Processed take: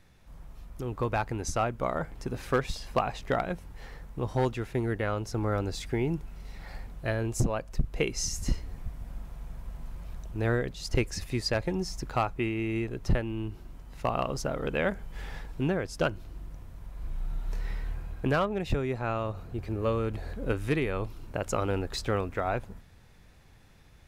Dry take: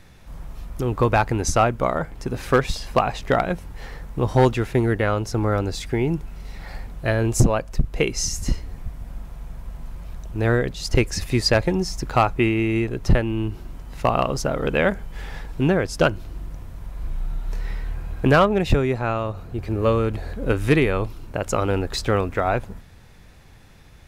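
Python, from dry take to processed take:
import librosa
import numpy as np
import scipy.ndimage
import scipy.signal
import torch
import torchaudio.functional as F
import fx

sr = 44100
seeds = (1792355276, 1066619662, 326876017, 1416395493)

y = fx.rider(x, sr, range_db=3, speed_s=0.5)
y = F.gain(torch.from_numpy(y), -8.5).numpy()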